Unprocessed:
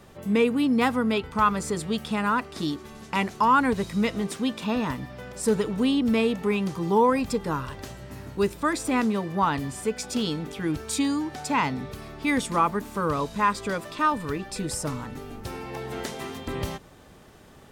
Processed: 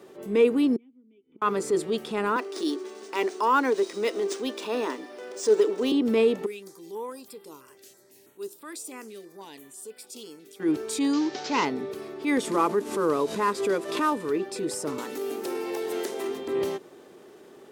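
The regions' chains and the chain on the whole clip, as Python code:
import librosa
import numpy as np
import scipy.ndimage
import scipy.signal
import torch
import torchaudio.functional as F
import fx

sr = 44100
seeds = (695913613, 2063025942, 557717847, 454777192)

y = fx.chain(x, sr, fx.formant_cascade(vowel='i'),
    fx.gate_flip(shuts_db=-32.0, range_db=-26), at=(0.76, 1.42))
y = fx.chain(y, sr, fx.highpass(hz=280.0, slope=24),
    fx.peak_eq(hz=6100.0, db=9.5, octaves=1.1),
    fx.resample_linear(factor=3), at=(2.36, 5.92))
y = fx.chain(y, sr, fx.pre_emphasis(coefficient=0.9),
    fx.filter_held_notch(hz=6.1, low_hz=980.0, high_hz=6400.0), at=(6.46, 10.6))
y = fx.chain(y, sr, fx.cvsd(bps=32000),
    fx.high_shelf(hz=2700.0, db=12.0), at=(11.13, 11.65))
y = fx.chain(y, sr, fx.cvsd(bps=64000),
    fx.pre_swell(db_per_s=97.0), at=(12.43, 14.31))
y = fx.chain(y, sr, fx.highpass(hz=240.0, slope=12),
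    fx.high_shelf(hz=6600.0, db=8.5),
    fx.band_squash(depth_pct=100), at=(14.98, 16.28))
y = scipy.signal.sosfilt(scipy.signal.butter(2, 240.0, 'highpass', fs=sr, output='sos'), y)
y = fx.peak_eq(y, sr, hz=380.0, db=14.0, octaves=0.7)
y = fx.transient(y, sr, attack_db=-5, sustain_db=0)
y = y * 10.0 ** (-2.5 / 20.0)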